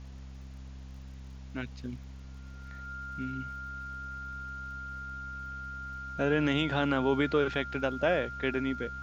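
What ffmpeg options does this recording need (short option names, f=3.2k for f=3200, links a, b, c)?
-af "adeclick=t=4,bandreject=f=66:t=h:w=4,bandreject=f=132:t=h:w=4,bandreject=f=198:t=h:w=4,bandreject=f=264:t=h:w=4,bandreject=f=1.4k:w=30,afftdn=nr=30:nf=-45"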